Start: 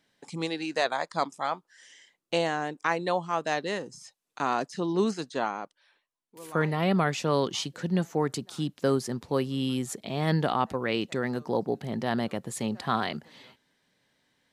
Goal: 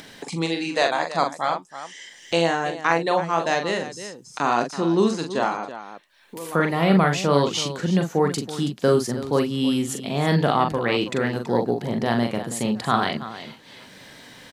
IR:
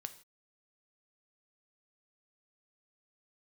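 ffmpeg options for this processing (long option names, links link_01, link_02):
-filter_complex "[0:a]asplit=2[link_01][link_02];[link_02]aecho=0:1:42|327:0.531|0.211[link_03];[link_01][link_03]amix=inputs=2:normalize=0,acompressor=mode=upward:threshold=-33dB:ratio=2.5,volume=5.5dB"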